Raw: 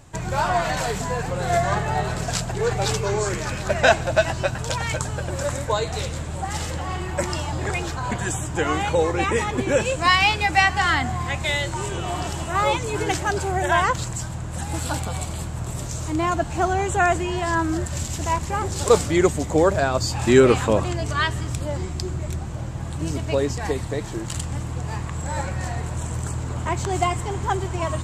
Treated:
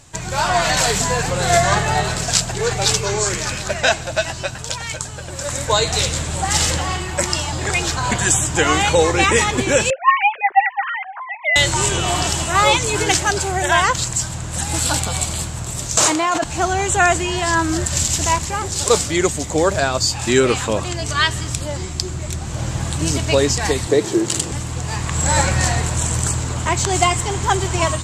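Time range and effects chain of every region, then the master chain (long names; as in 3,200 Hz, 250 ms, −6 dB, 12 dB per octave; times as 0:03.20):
0:09.90–0:11.56: three sine waves on the formant tracks + low-pass filter 2,200 Hz 24 dB per octave
0:15.97–0:16.44: high-pass filter 560 Hz + spectral tilt −2 dB per octave + envelope flattener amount 100%
0:23.87–0:24.52: high-pass filter 110 Hz + parametric band 380 Hz +14 dB 0.85 octaves
whole clip: parametric band 6,000 Hz +10.5 dB 2.8 octaves; automatic gain control; level −1 dB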